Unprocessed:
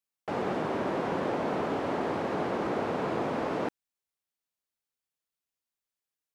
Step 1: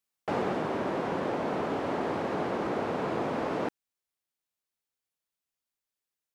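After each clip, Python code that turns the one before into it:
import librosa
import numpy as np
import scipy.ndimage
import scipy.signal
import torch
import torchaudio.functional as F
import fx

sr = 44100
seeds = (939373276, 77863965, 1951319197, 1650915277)

y = fx.rider(x, sr, range_db=10, speed_s=0.5)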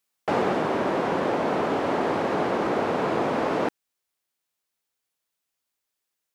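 y = fx.low_shelf(x, sr, hz=190.0, db=-5.0)
y = F.gain(torch.from_numpy(y), 7.0).numpy()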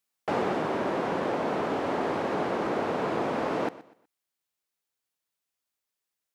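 y = fx.echo_feedback(x, sr, ms=123, feedback_pct=31, wet_db=-18)
y = F.gain(torch.from_numpy(y), -4.0).numpy()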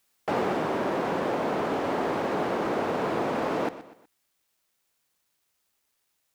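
y = fx.law_mismatch(x, sr, coded='mu')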